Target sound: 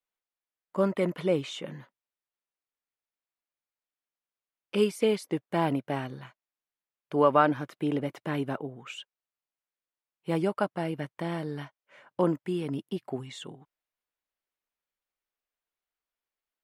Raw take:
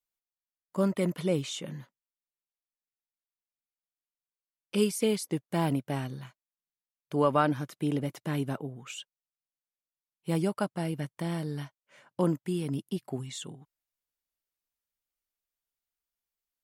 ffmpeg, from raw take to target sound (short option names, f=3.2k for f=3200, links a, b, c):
-af "bass=f=250:g=-8,treble=f=4k:g=-13,volume=4dB"